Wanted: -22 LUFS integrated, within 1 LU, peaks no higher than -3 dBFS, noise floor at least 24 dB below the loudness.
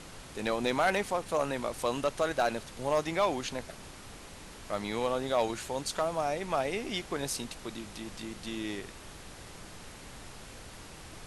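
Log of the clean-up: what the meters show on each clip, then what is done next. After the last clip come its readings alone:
clipped 0.3%; flat tops at -19.5 dBFS; noise floor -48 dBFS; noise floor target -57 dBFS; loudness -32.5 LUFS; peak -19.5 dBFS; loudness target -22.0 LUFS
-> clip repair -19.5 dBFS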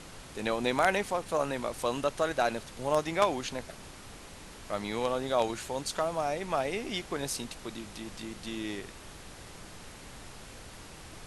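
clipped 0.0%; noise floor -48 dBFS; noise floor target -56 dBFS
-> noise print and reduce 8 dB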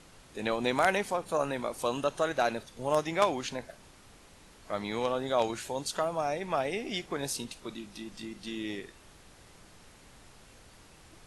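noise floor -56 dBFS; loudness -32.0 LUFS; peak -10.5 dBFS; loudness target -22.0 LUFS
-> gain +10 dB; limiter -3 dBFS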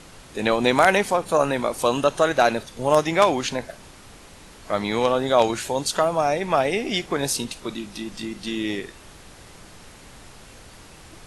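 loudness -22.0 LUFS; peak -3.0 dBFS; noise floor -46 dBFS

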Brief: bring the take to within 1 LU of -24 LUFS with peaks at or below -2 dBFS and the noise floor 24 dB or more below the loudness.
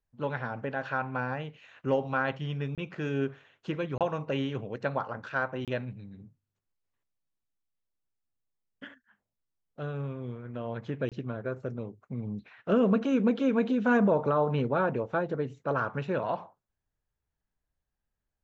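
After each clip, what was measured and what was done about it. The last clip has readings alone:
dropouts 4; longest dropout 27 ms; loudness -31.0 LUFS; peak -14.0 dBFS; loudness target -24.0 LUFS
-> interpolate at 2.75/3.98/5.65/11.09, 27 ms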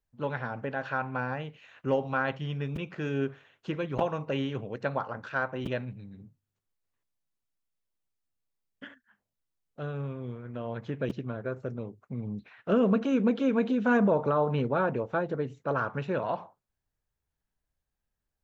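dropouts 0; loudness -30.5 LUFS; peak -13.0 dBFS; loudness target -24.0 LUFS
-> gain +6.5 dB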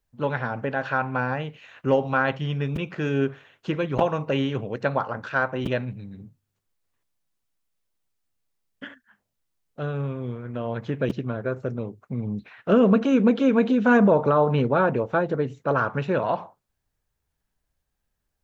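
loudness -24.0 LUFS; peak -6.5 dBFS; noise floor -79 dBFS

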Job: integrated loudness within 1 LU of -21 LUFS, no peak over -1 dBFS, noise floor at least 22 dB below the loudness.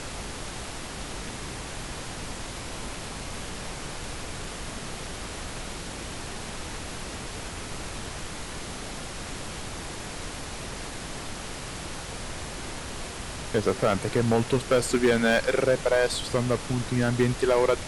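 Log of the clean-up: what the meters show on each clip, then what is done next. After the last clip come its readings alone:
clipped 0.4%; flat tops at -14.5 dBFS; noise floor -37 dBFS; noise floor target -52 dBFS; loudness -29.5 LUFS; peak -14.5 dBFS; loudness target -21.0 LUFS
-> clip repair -14.5 dBFS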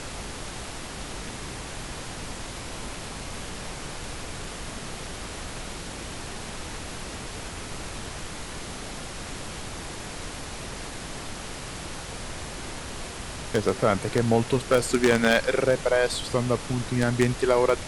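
clipped 0.0%; noise floor -37 dBFS; noise floor target -51 dBFS
-> noise print and reduce 14 dB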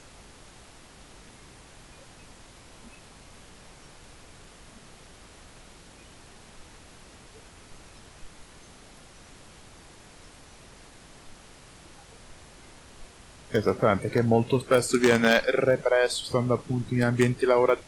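noise floor -51 dBFS; loudness -24.0 LUFS; peak -5.5 dBFS; loudness target -21.0 LUFS
-> gain +3 dB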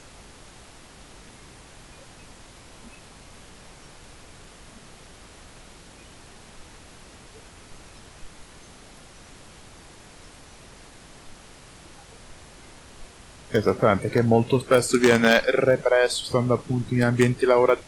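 loudness -21.0 LUFS; peak -2.5 dBFS; noise floor -48 dBFS

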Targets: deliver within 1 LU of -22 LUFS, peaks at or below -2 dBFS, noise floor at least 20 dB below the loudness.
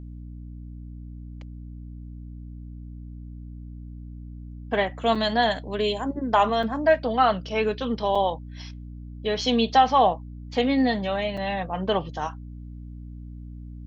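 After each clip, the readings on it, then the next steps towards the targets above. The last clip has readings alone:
dropouts 4; longest dropout 4.9 ms; hum 60 Hz; harmonics up to 300 Hz; hum level -36 dBFS; loudness -24.0 LUFS; peak -5.5 dBFS; loudness target -22.0 LUFS
-> interpolate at 5.15/6.63/8.15/11.37, 4.9 ms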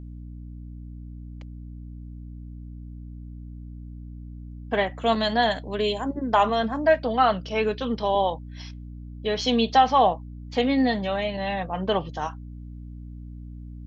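dropouts 0; hum 60 Hz; harmonics up to 300 Hz; hum level -36 dBFS
-> de-hum 60 Hz, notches 5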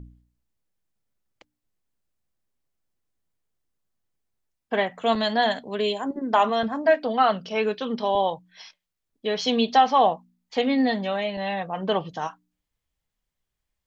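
hum none; loudness -24.0 LUFS; peak -6.0 dBFS; loudness target -22.0 LUFS
-> gain +2 dB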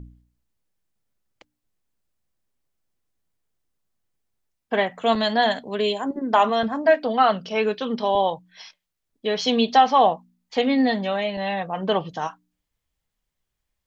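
loudness -22.0 LUFS; peak -4.0 dBFS; noise floor -81 dBFS

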